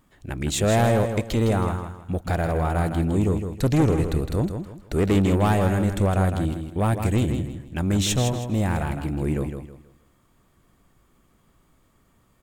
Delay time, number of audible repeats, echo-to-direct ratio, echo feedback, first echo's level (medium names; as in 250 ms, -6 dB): 160 ms, 3, -7.0 dB, 31%, -7.5 dB